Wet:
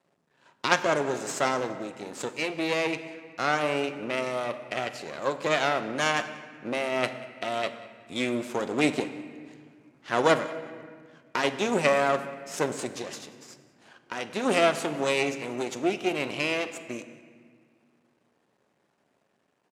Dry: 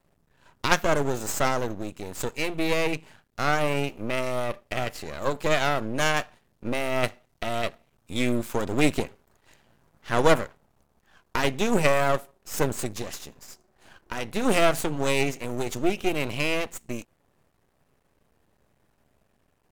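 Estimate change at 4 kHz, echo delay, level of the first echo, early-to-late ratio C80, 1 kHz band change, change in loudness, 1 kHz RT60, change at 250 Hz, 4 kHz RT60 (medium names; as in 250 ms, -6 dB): -1.0 dB, 187 ms, -22.0 dB, 12.5 dB, -0.5 dB, -1.0 dB, 1.6 s, -2.0 dB, 1.2 s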